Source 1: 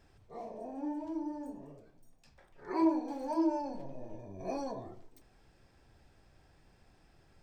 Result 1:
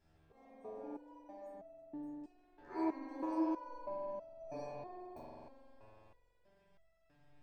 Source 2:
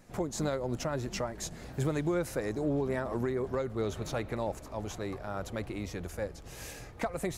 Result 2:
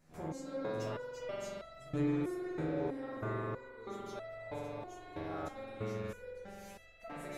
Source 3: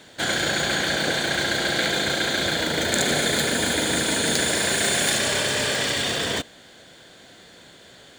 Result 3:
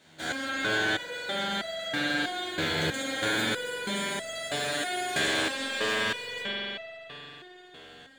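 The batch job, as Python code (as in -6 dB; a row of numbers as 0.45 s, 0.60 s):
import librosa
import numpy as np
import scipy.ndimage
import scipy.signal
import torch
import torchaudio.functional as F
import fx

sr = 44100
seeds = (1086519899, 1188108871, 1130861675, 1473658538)

y = fx.rev_spring(x, sr, rt60_s=3.5, pass_ms=(44,), chirp_ms=40, drr_db=-8.0)
y = fx.resonator_held(y, sr, hz=3.1, low_hz=80.0, high_hz=660.0)
y = y * librosa.db_to_amplitude(-2.0)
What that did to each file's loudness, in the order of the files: -7.0 LU, -6.0 LU, -7.5 LU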